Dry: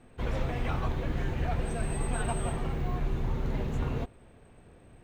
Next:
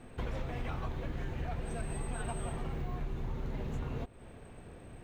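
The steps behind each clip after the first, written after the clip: compressor 4:1, threshold -40 dBFS, peak gain reduction 13.5 dB; gain +4.5 dB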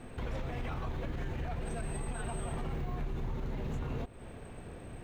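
limiter -32.5 dBFS, peak gain reduction 8 dB; gain +4 dB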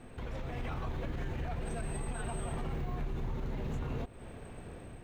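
AGC gain up to 3.5 dB; gain -3.5 dB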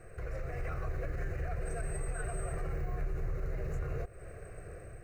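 fixed phaser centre 910 Hz, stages 6; gain +2.5 dB

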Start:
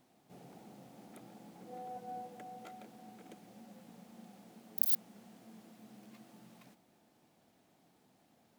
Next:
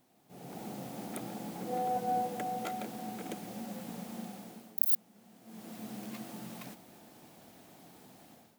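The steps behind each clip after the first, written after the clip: high shelf 11000 Hz +8 dB; AGC gain up to 14 dB; gain -1 dB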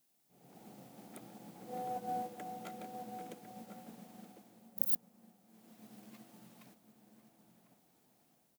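added noise blue -59 dBFS; outdoor echo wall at 180 m, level -6 dB; upward expander 1.5:1, over -51 dBFS; gain -3.5 dB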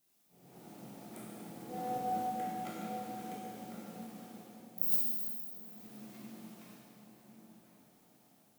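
reverb RT60 2.1 s, pre-delay 7 ms, DRR -6 dB; gain -2 dB

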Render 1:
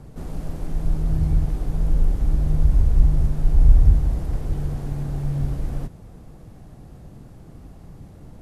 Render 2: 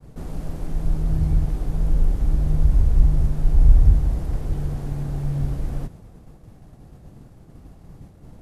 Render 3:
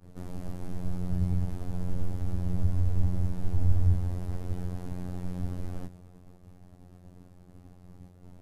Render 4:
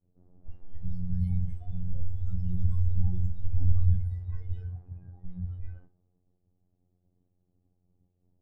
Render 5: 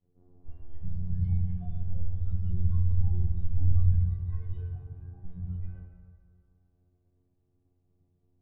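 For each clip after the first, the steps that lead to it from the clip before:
expander -38 dBFS
robotiser 89.6 Hz; gain -4 dB
spectral noise reduction 21 dB; low-pass opened by the level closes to 620 Hz, open at -23 dBFS; flutter echo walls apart 10 m, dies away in 0.24 s
air absorption 200 m; reverb RT60 2.4 s, pre-delay 3 ms, DRR 0.5 dB

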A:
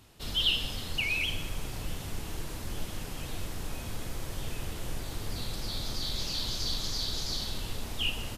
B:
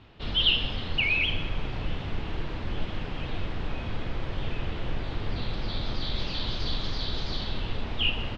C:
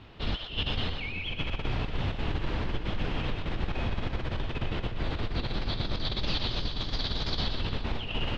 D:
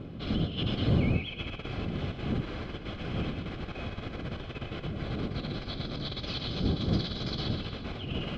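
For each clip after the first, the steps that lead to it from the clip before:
LPF 3500 Hz 24 dB/oct; gain +5.5 dB
negative-ratio compressor -30 dBFS, ratio -0.5; split-band echo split 490 Hz, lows 0.299 s, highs 0.122 s, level -7.5 dB
wind noise 180 Hz -28 dBFS; notch comb 920 Hz; gain -3 dB

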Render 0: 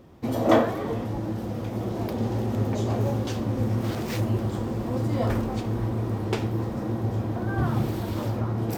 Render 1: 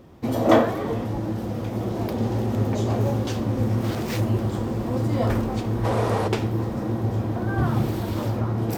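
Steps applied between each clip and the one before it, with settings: spectral gain 5.85–6.28, 390–12000 Hz +11 dB; gain +2.5 dB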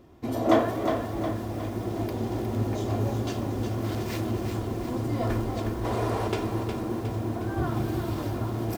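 comb 2.9 ms, depth 39%; lo-fi delay 0.361 s, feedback 55%, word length 7-bit, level -6 dB; gain -5.5 dB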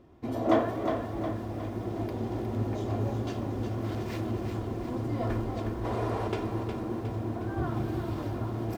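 high shelf 4800 Hz -9.5 dB; gain -3 dB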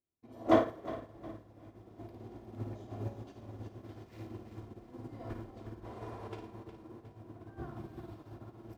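on a send: flutter echo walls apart 9.5 m, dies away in 0.61 s; on the sum: upward expander 2.5:1, over -46 dBFS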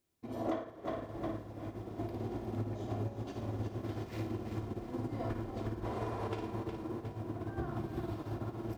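compressor 16:1, threshold -44 dBFS, peak gain reduction 26 dB; gain +11 dB

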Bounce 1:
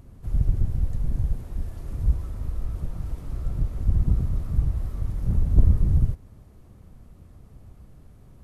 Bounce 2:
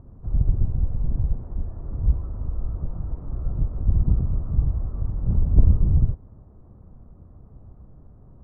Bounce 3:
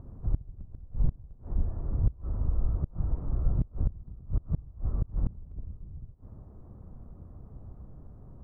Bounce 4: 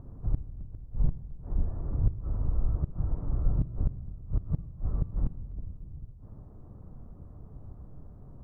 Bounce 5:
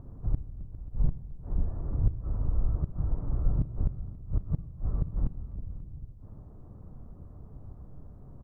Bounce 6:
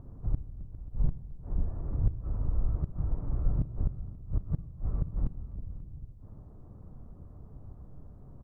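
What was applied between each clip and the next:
LPF 1200 Hz 24 dB/oct; gain +1.5 dB
flipped gate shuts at -15 dBFS, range -25 dB
shoebox room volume 1600 m³, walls mixed, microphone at 0.37 m
echo 0.536 s -17 dB
tracing distortion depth 0.1 ms; gain -1.5 dB

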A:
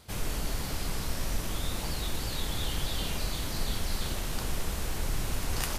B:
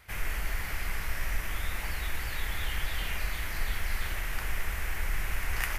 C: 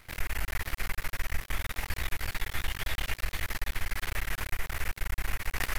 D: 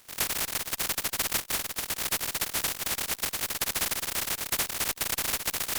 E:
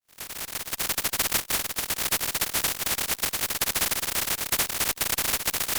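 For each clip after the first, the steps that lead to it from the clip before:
ten-band EQ 125 Hz -8 dB, 250 Hz -11 dB, 500 Hz -6 dB, 1000 Hz -3 dB, 2000 Hz +11 dB, 4000 Hz -10 dB, 8000 Hz -7 dB; gain +1.5 dB
half-wave rectifier; compressor 4:1, threshold -29 dBFS, peak gain reduction 6 dB; gain +5 dB
spectral contrast lowered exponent 0.13; one-sided clip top -17 dBFS; gain -2 dB
opening faded in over 1.02 s; gain +3.5 dB

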